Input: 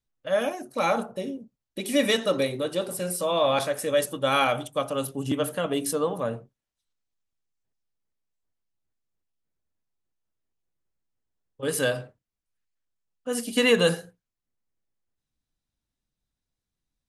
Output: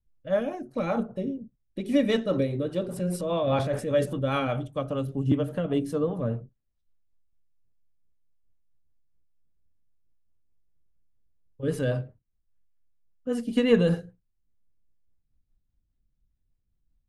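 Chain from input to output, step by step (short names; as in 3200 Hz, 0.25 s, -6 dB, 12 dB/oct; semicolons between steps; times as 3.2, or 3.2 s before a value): RIAA curve playback; 2.84–4.28 transient shaper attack 0 dB, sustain +8 dB; rotary speaker horn 5 Hz; gain -2.5 dB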